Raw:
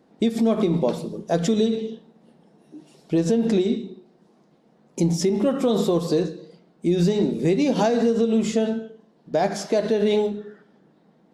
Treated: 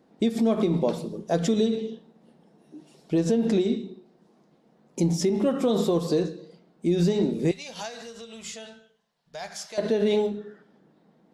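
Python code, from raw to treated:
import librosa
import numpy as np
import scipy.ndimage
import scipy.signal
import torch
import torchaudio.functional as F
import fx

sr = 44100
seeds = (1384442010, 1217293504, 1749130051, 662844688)

y = fx.tone_stack(x, sr, knobs='10-0-10', at=(7.51, 9.78))
y = y * librosa.db_to_amplitude(-2.5)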